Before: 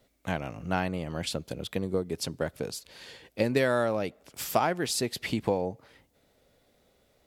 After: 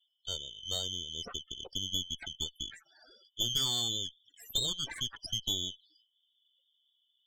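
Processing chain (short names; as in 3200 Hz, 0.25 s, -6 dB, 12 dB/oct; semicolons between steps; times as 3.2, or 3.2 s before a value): four-band scrambler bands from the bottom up 3412; loudest bins only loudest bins 16; added harmonics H 5 -39 dB, 6 -14 dB, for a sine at -12.5 dBFS; gain -7 dB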